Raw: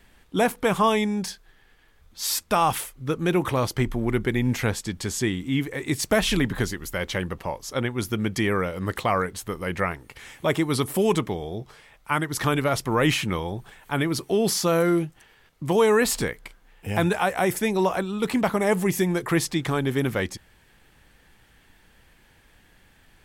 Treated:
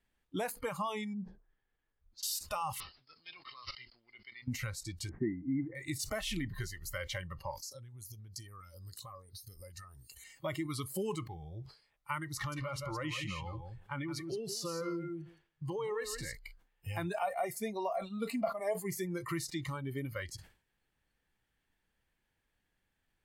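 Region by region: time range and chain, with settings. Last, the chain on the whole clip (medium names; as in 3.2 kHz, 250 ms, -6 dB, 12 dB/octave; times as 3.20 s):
1.13–2.23 s: low-pass that closes with the level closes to 400 Hz, closed at -29.5 dBFS + tape noise reduction on one side only decoder only
2.80–4.48 s: pre-emphasis filter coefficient 0.97 + careless resampling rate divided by 4×, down none, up filtered
5.09–5.75 s: Chebyshev low-pass 2.1 kHz, order 6 + small resonant body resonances 220/320/700 Hz, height 9 dB, ringing for 20 ms
7.51–10.24 s: resonant high shelf 3.4 kHz +9 dB, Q 1.5 + compression, threshold -35 dBFS + step-sequenced notch 7.3 Hz 450–7200 Hz
12.35–16.35 s: treble shelf 9.2 kHz -10.5 dB + compression 2:1, threshold -24 dBFS + feedback delay 168 ms, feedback 15%, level -6 dB
17.14–18.80 s: peaking EQ 650 Hz +13.5 dB 0.3 oct + comb 4.3 ms, depth 36%
whole clip: compression 3:1, threshold -28 dBFS; spectral noise reduction 18 dB; decay stretcher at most 140 dB/s; trim -6.5 dB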